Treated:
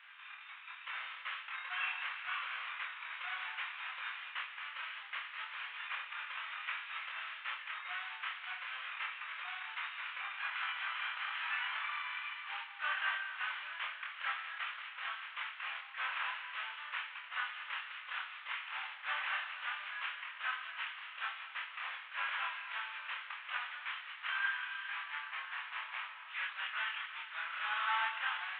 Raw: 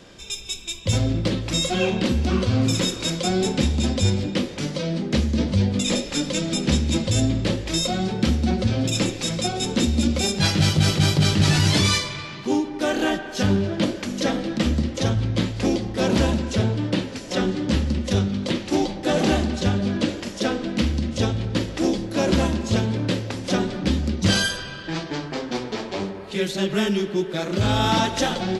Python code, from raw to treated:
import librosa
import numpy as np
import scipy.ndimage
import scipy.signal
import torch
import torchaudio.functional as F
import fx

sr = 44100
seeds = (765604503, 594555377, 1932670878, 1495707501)

y = fx.cvsd(x, sr, bps=16000)
y = scipy.signal.sosfilt(scipy.signal.butter(6, 1100.0, 'highpass', fs=sr, output='sos'), y)
y = fx.doubler(y, sr, ms=25.0, db=-3.0)
y = F.gain(torch.from_numpy(y), -4.5).numpy()